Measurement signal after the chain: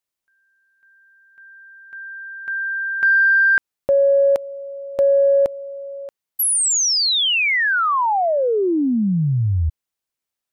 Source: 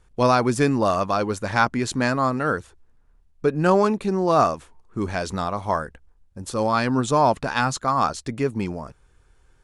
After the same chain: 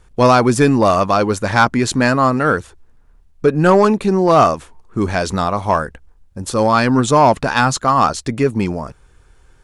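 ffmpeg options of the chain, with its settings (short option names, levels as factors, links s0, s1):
-af "acontrast=88,volume=1.12"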